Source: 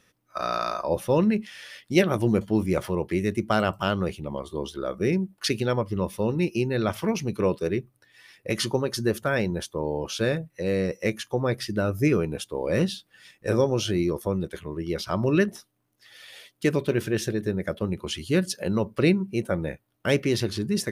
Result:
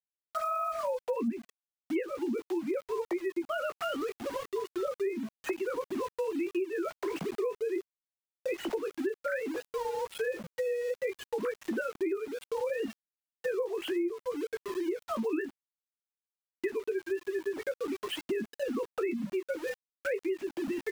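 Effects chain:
three sine waves on the formant tracks
double-tracking delay 18 ms −7 dB
centre clipping without the shift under −37 dBFS
downward compressor 6 to 1, threshold −30 dBFS, peak gain reduction 17.5 dB

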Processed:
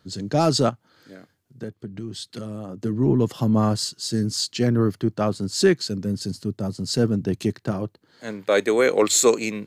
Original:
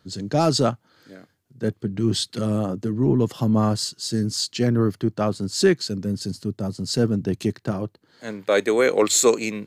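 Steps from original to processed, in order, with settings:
0:00.69–0:02.82: downward compressor 5 to 1, threshold −31 dBFS, peak gain reduction 14 dB

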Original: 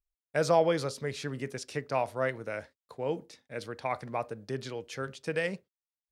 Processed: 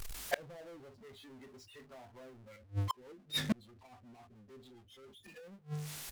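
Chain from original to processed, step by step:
loose part that buzzes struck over −33 dBFS, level −30 dBFS
noise reduction from a noise print of the clip's start 30 dB
mains-hum notches 50/100/150 Hz
treble cut that deepens with the level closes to 510 Hz, closed at −29 dBFS
parametric band 520 Hz −2.5 dB 2 octaves
double-tracking delay 20 ms −10.5 dB
power curve on the samples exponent 0.35
gate with flip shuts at −32 dBFS, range −38 dB
0:02.56–0:05.11: rotating-speaker cabinet horn 7 Hz
level +13 dB

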